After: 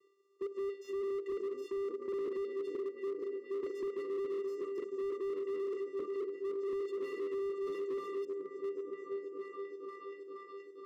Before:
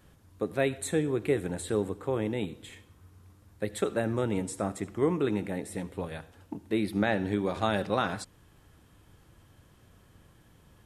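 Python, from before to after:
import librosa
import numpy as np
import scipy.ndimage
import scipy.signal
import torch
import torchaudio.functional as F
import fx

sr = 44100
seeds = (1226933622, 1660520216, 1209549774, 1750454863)

y = fx.pitch_trill(x, sr, semitones=-1.5, every_ms=73)
y = fx.low_shelf(y, sr, hz=190.0, db=-9.0)
y = fx.vocoder(y, sr, bands=8, carrier='square', carrier_hz=395.0)
y = fx.echo_opening(y, sr, ms=475, hz=200, octaves=1, feedback_pct=70, wet_db=0)
y = fx.slew_limit(y, sr, full_power_hz=6.6)
y = y * librosa.db_to_amplitude(1.0)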